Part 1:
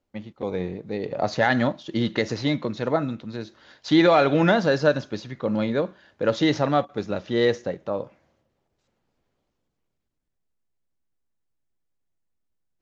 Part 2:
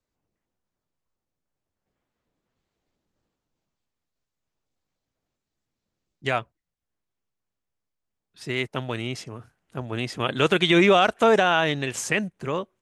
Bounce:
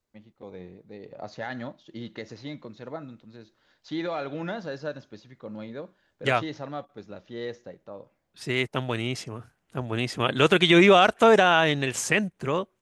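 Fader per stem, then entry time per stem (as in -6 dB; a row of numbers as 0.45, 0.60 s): -14.0, +1.0 dB; 0.00, 0.00 s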